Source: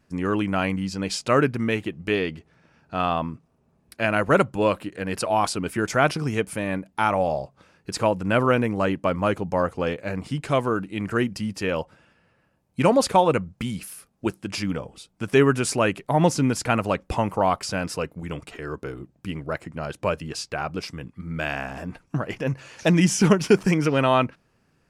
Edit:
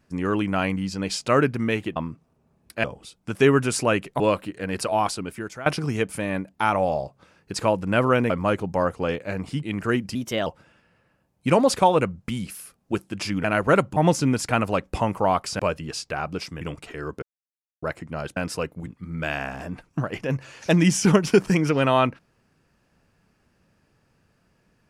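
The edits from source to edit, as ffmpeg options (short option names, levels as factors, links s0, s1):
-filter_complex "[0:a]asplit=17[s0][s1][s2][s3][s4][s5][s6][s7][s8][s9][s10][s11][s12][s13][s14][s15][s16];[s0]atrim=end=1.962[s17];[s1]atrim=start=3.178:end=4.062[s18];[s2]atrim=start=14.768:end=16.132[s19];[s3]atrim=start=4.578:end=6.04,asetpts=PTS-STARTPTS,afade=t=out:st=0.722:d=0.74:silence=0.112202[s20];[s4]atrim=start=6.04:end=8.682,asetpts=PTS-STARTPTS,afade=t=in:d=0.004:c=hsin:silence=0.112202[s21];[s5]atrim=start=9.078:end=10.412[s22];[s6]atrim=start=10.898:end=11.424[s23];[s7]atrim=start=11.42:end=11.79,asetpts=PTS-STARTPTS,asetrate=52038,aresample=44100[s24];[s8]atrim=start=11.786:end=14.772[s25];[s9]atrim=start=4.058:end=4.582[s26];[s10]atrim=start=16.128:end=17.762[s27];[s11]atrim=start=20.008:end=21.032[s28];[s12]atrim=start=18.258:end=18.87,asetpts=PTS-STARTPTS,afade=t=out:st=0.608:d=0.004:c=hsin[s29];[s13]atrim=start=18.87:end=19.47,asetpts=PTS-STARTPTS,volume=0[s30];[s14]atrim=start=19.47:end=20.012,asetpts=PTS-STARTPTS,afade=t=in:d=0.004:c=hsin[s31];[s15]atrim=start=17.758:end=18.262[s32];[s16]atrim=start=21.028[s33];[s17][s18]acrossfade=d=0.004:c1=hsin:c2=hsin[s34];[s34][s19]acrossfade=d=0.004:c1=hsin:c2=hsin[s35];[s20][s21]concat=n=2:v=0:a=1[s36];[s35][s36]acrossfade=d=0.004:c1=hsin:c2=hsin[s37];[s37][s22]acrossfade=d=0.004:c1=hsin:c2=hsin[s38];[s38][s23]acrossfade=d=0.004:c1=hsin:c2=hsin[s39];[s39][s24]acrossfade=d=0.004:c1=hsin:c2=hsin[s40];[s40][s25]acrossfade=d=0.004:c1=hsin:c2=hsin[s41];[s41][s26]acrossfade=d=0.004:c1=hsin:c2=hsin[s42];[s42][s27]acrossfade=d=0.004:c1=hsin:c2=hsin[s43];[s43][s28]acrossfade=d=0.004:c1=hsin:c2=hsin[s44];[s29][s30][s31]concat=n=3:v=0:a=1[s45];[s44][s45]acrossfade=d=0.004:c1=hsin:c2=hsin[s46];[s46][s32]acrossfade=d=0.004:c1=hsin:c2=hsin[s47];[s47][s33]acrossfade=d=0.004:c1=hsin:c2=hsin"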